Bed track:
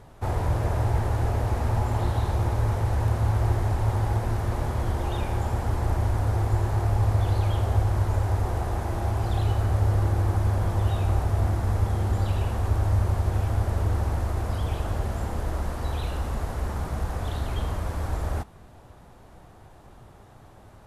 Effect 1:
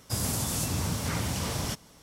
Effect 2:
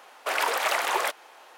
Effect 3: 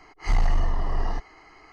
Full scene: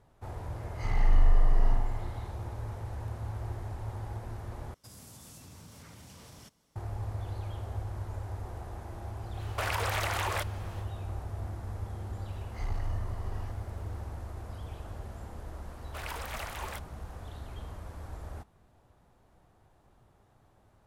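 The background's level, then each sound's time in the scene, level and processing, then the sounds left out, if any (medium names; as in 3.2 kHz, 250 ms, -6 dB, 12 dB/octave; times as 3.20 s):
bed track -14 dB
0.55 s: add 3 -11 dB + spring tank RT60 1.1 s, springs 40 ms, chirp 40 ms, DRR -3.5 dB
4.74 s: replace with 1 -16.5 dB + compression 3:1, threshold -31 dBFS
9.32 s: add 2 -0.5 dB, fades 0.10 s + compression, threshold -28 dBFS
12.32 s: add 3 -14.5 dB + small samples zeroed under -51 dBFS
15.68 s: add 2 -15 dB + treble shelf 10 kHz +5.5 dB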